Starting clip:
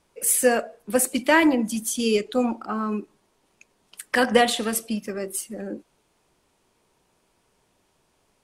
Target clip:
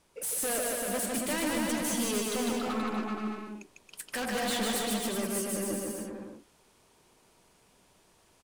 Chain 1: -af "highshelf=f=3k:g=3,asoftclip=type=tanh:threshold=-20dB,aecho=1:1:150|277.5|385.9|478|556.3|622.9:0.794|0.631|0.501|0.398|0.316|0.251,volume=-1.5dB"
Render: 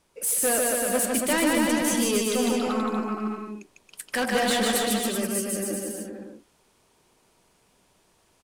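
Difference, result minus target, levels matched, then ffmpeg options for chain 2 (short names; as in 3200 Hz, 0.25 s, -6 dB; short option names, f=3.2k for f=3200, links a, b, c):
soft clip: distortion -5 dB
-af "highshelf=f=3k:g=3,asoftclip=type=tanh:threshold=-30.5dB,aecho=1:1:150|277.5|385.9|478|556.3|622.9:0.794|0.631|0.501|0.398|0.316|0.251,volume=-1.5dB"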